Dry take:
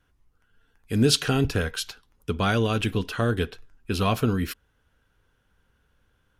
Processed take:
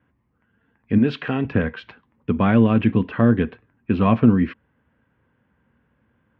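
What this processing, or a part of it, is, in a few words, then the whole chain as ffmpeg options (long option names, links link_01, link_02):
bass cabinet: -filter_complex "[0:a]asettb=1/sr,asplit=3[link_01][link_02][link_03];[link_01]atrim=end=0.984[link_04];[link_02]atrim=start=0.98:end=1.51,asetpts=PTS-STARTPTS,afade=type=in:duration=0.004:curve=qsin,afade=type=out:start_time=0.526:duration=0.004:curve=qsin,lowshelf=frequency=360:gain=-11.5[link_05];[link_03]atrim=start=1.506[link_06];[link_04][link_05]acrossfade=duration=0.004:curve1=hsin:curve2=qsin[link_07];[link_07][link_06]acrossfade=duration=0.004:curve1=qsin:curve2=hsin,highpass=frequency=77:width=0.5412,highpass=frequency=77:width=1.3066,equalizer=frequency=88:width_type=q:width=4:gain=-6,equalizer=frequency=230:width_type=q:width=4:gain=7,equalizer=frequency=420:width_type=q:width=4:gain=-5,equalizer=frequency=740:width_type=q:width=4:gain=-4,equalizer=frequency=1400:width_type=q:width=4:gain=-9,lowpass=frequency=2100:width=0.5412,lowpass=frequency=2100:width=1.3066,volume=7dB"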